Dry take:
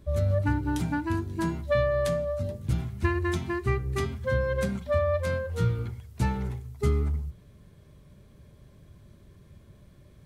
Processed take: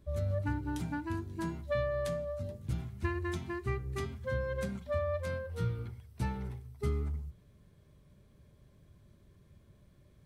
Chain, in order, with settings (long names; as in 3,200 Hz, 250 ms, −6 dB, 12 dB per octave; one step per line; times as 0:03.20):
0:05.28–0:06.88: notch filter 6,900 Hz, Q 6.5
level −8 dB